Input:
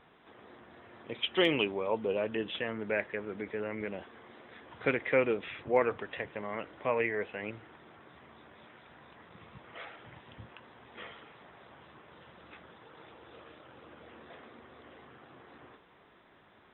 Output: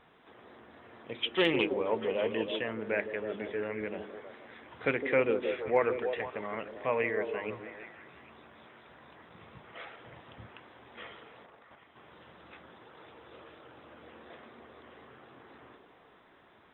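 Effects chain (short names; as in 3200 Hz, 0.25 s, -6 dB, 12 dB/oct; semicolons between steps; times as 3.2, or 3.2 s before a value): notches 50/100/150/200/250/300/350/400 Hz; 11.46–11.98 level quantiser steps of 11 dB; delay with a stepping band-pass 0.159 s, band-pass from 340 Hz, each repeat 0.7 oct, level -4 dB; 1.34–1.99 Doppler distortion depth 0.11 ms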